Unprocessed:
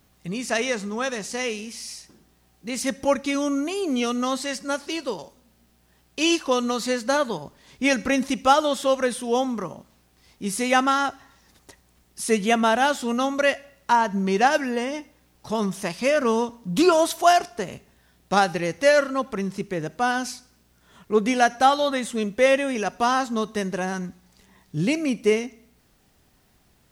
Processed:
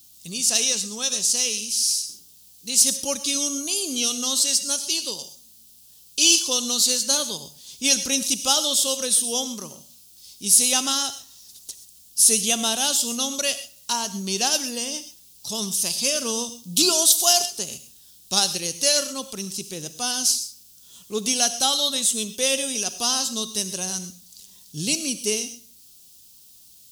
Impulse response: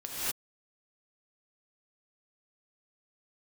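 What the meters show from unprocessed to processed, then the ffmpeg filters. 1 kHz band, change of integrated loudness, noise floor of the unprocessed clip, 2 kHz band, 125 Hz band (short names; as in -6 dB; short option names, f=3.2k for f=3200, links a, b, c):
-10.0 dB, +2.5 dB, -62 dBFS, -6.5 dB, -6.5 dB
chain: -filter_complex "[0:a]equalizer=f=160:w=0.34:g=5,aexciter=amount=11.6:drive=7.3:freq=3k,asplit=2[a][b];[1:a]atrim=start_sample=2205,atrim=end_sample=6174,highshelf=f=4.7k:g=8.5[c];[b][c]afir=irnorm=-1:irlink=0,volume=-10dB[d];[a][d]amix=inputs=2:normalize=0,volume=-13dB"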